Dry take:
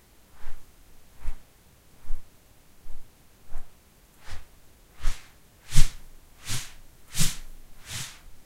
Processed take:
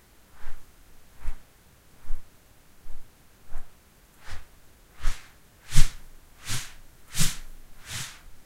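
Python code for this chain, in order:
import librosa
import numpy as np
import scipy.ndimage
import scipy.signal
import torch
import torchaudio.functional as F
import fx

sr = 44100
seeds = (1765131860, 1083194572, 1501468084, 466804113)

y = fx.peak_eq(x, sr, hz=1500.0, db=3.5, octaves=0.77)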